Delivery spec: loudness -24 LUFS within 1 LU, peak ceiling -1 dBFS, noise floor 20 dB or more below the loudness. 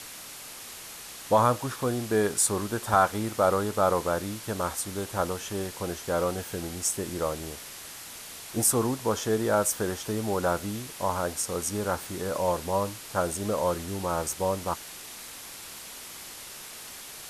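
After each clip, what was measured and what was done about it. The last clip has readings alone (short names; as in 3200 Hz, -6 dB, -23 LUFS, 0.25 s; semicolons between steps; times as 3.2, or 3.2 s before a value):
noise floor -43 dBFS; noise floor target -48 dBFS; loudness -28.0 LUFS; peak -8.5 dBFS; loudness target -24.0 LUFS
-> denoiser 6 dB, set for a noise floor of -43 dBFS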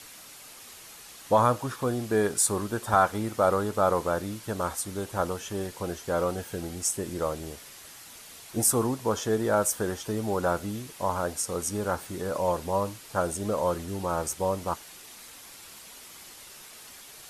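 noise floor -48 dBFS; loudness -28.0 LUFS; peak -8.5 dBFS; loudness target -24.0 LUFS
-> gain +4 dB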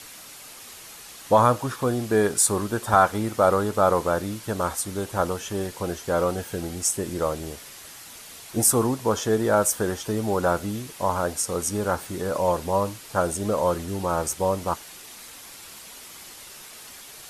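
loudness -24.0 LUFS; peak -4.5 dBFS; noise floor -44 dBFS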